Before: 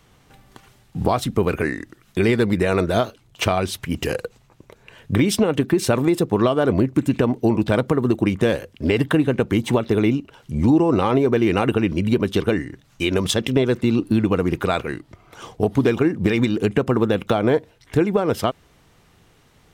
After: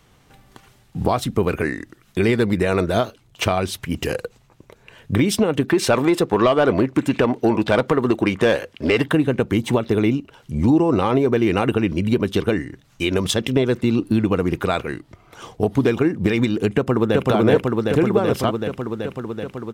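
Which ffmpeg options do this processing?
-filter_complex "[0:a]asettb=1/sr,asplit=3[s0][s1][s2];[s0]atrim=end=5.684[s3];[s1]atrim=start=5.68:end=9.08,asetpts=PTS-STARTPTS,afade=t=in:d=0.004:c=qsin,afade=t=out:st=3.396:d=0.004:c=qsin,asplit=2[s4][s5];[s5]highpass=f=720:p=1,volume=4.47,asoftclip=type=tanh:threshold=0.596[s6];[s4][s6]amix=inputs=2:normalize=0,lowpass=f=3800:p=1,volume=0.501[s7];[s2]atrim=start=9.076[s8];[s3][s7]acrossfade=d=0.004:c1=hsin:c2=qsin[s9];[s9][s8]acrossfade=d=0.004:c1=qsin:c2=hsin,asplit=2[s10][s11];[s11]afade=t=in:st=16.76:d=0.01,afade=t=out:st=17.29:d=0.01,aecho=0:1:380|760|1140|1520|1900|2280|2660|3040|3420|3800|4180|4560:0.944061|0.755249|0.604199|0.483359|0.386687|0.30935|0.24748|0.197984|0.158387|0.12671|0.101368|0.0810942[s12];[s10][s12]amix=inputs=2:normalize=0"

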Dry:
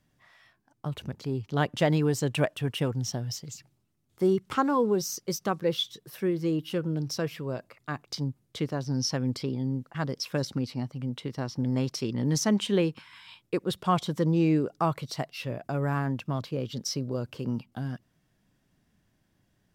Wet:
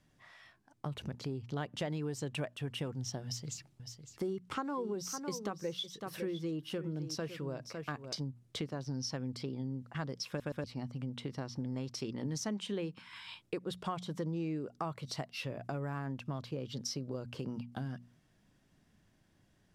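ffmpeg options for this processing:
-filter_complex "[0:a]asettb=1/sr,asplit=3[s0][s1][s2];[s0]atrim=end=3.244[s3];[s1]atrim=start=3.24:end=8.22,asetpts=PTS-STARTPTS,afade=t=in:d=0.004:c=qsin,afade=t=out:st=4.976:d=0.004:c=qsin,aecho=1:1:556:0.224,atrim=end_sample=219618[s4];[s2]atrim=start=8.216[s5];[s3][s4]acrossfade=d=0.004:c1=hsin:c2=qsin[s6];[s6][s5]acrossfade=d=0.004:c1=qsin:c2=hsin,asplit=4[s7][s8][s9][s10];[s7]atrim=end=10.402[s11];[s8]atrim=start=10.278:end=10.402[s12];[s9]atrim=start=10.278:end=10.402[s13];[s10]atrim=start=10.638[s14];[s11][s12]acrossfade=d=0.004:c1=hsin:c2=hsin[s15];[s15][s13]acrossfade=d=0.004:c1=hsin:c2=hsin[s16];[s16][s14]acrossfade=d=0.004:c1=hsin:c2=hsin,lowpass=11000,bandreject=f=60:t=h:w=6,bandreject=f=120:t=h:w=6,bandreject=f=180:t=h:w=6,bandreject=f=240:t=h:w=6,acompressor=threshold=0.0126:ratio=4,volume=1.12"

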